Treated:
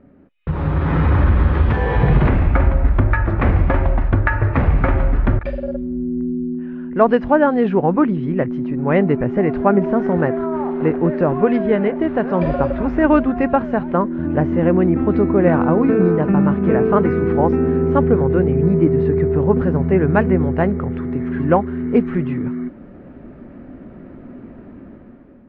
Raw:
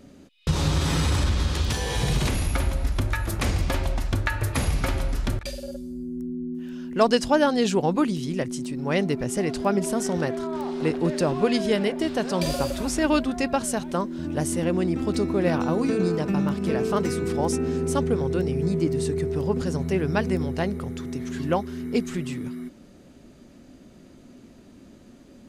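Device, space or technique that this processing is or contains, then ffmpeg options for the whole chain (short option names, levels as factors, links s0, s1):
action camera in a waterproof case: -af "lowpass=f=1900:w=0.5412,lowpass=f=1900:w=1.3066,dynaudnorm=f=240:g=7:m=3.98" -ar 16000 -c:a aac -b:a 48k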